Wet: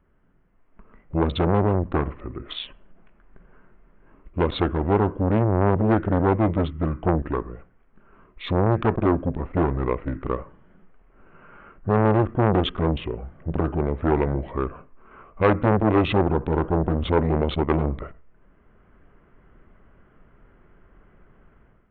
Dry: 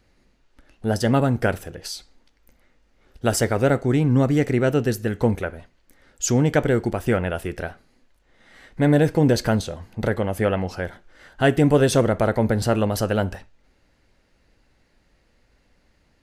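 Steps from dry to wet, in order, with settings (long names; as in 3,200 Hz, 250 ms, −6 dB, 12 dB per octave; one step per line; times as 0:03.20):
adaptive Wiener filter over 9 samples
automatic gain control gain up to 11 dB
wrong playback speed 45 rpm record played at 33 rpm
downsampling to 8,000 Hz
saturating transformer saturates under 740 Hz
level −2 dB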